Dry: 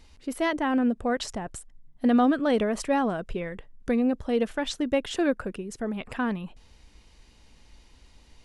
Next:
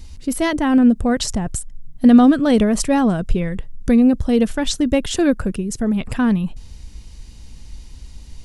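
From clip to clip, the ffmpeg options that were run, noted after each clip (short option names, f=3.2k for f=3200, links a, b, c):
-af "bass=f=250:g=14,treble=f=4k:g=10,volume=4.5dB"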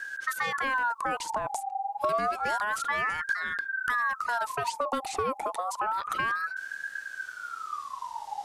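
-filter_complex "[0:a]acrossover=split=2300|5600[a][b][c];[a]acompressor=threshold=-26dB:ratio=4[d];[b]acompressor=threshold=-46dB:ratio=4[e];[c]acompressor=threshold=-40dB:ratio=4[f];[d][e][f]amix=inputs=3:normalize=0,aeval=exprs='val(0)*sin(2*PI*1200*n/s+1200*0.35/0.29*sin(2*PI*0.29*n/s))':c=same"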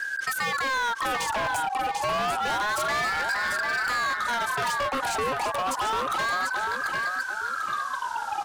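-filter_complex "[0:a]asplit=2[a][b];[b]aecho=0:1:743|1486|2229|2972:0.473|0.17|0.0613|0.0221[c];[a][c]amix=inputs=2:normalize=0,asoftclip=type=hard:threshold=-31dB,volume=7dB"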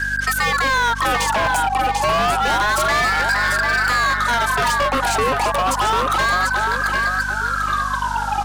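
-af "aeval=exprs='val(0)+0.0126*(sin(2*PI*50*n/s)+sin(2*PI*2*50*n/s)/2+sin(2*PI*3*50*n/s)/3+sin(2*PI*4*50*n/s)/4+sin(2*PI*5*50*n/s)/5)':c=same,volume=8.5dB"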